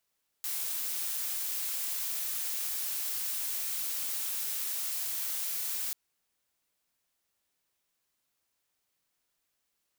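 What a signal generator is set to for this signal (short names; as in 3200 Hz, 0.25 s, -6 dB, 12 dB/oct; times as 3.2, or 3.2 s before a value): noise blue, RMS -34 dBFS 5.49 s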